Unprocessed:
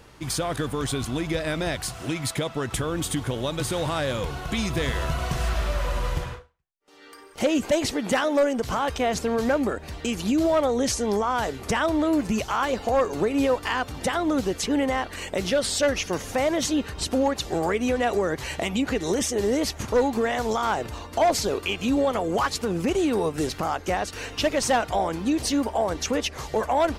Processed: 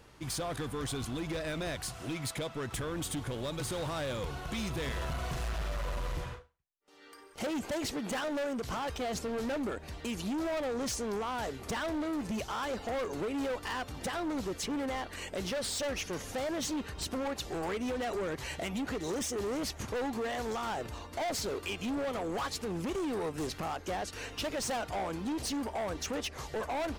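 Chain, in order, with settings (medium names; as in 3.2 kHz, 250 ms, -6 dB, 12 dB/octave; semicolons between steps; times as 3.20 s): overload inside the chain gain 24.5 dB; trim -7 dB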